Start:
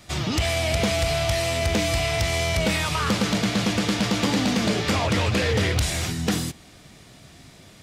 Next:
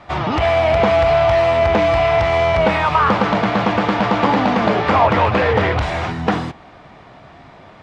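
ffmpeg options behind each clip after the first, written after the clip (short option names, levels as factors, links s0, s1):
-af "lowpass=2700,equalizer=f=900:t=o:w=1.7:g=14,volume=1.26"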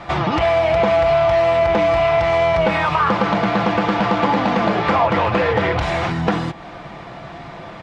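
-af "aecho=1:1:5.9:0.38,acompressor=threshold=0.0355:ratio=2,volume=2.24"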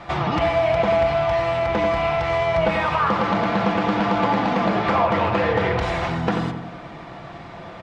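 -filter_complex "[0:a]asplit=2[s0][s1];[s1]adelay=89,lowpass=f=2100:p=1,volume=0.501,asplit=2[s2][s3];[s3]adelay=89,lowpass=f=2100:p=1,volume=0.55,asplit=2[s4][s5];[s5]adelay=89,lowpass=f=2100:p=1,volume=0.55,asplit=2[s6][s7];[s7]adelay=89,lowpass=f=2100:p=1,volume=0.55,asplit=2[s8][s9];[s9]adelay=89,lowpass=f=2100:p=1,volume=0.55,asplit=2[s10][s11];[s11]adelay=89,lowpass=f=2100:p=1,volume=0.55,asplit=2[s12][s13];[s13]adelay=89,lowpass=f=2100:p=1,volume=0.55[s14];[s0][s2][s4][s6][s8][s10][s12][s14]amix=inputs=8:normalize=0,volume=0.631"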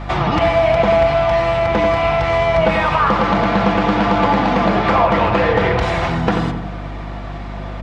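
-af "aeval=exprs='val(0)+0.0251*(sin(2*PI*50*n/s)+sin(2*PI*2*50*n/s)/2+sin(2*PI*3*50*n/s)/3+sin(2*PI*4*50*n/s)/4+sin(2*PI*5*50*n/s)/5)':c=same,volume=1.78"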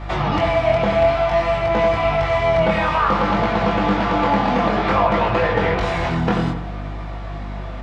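-af "flanger=delay=18:depth=6.7:speed=0.56"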